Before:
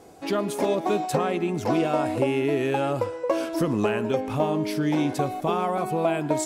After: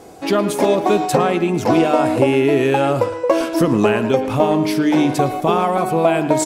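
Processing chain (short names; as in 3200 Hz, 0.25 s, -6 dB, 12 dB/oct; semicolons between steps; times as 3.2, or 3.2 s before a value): notches 50/100/150 Hz; speakerphone echo 0.11 s, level -12 dB; gain +8.5 dB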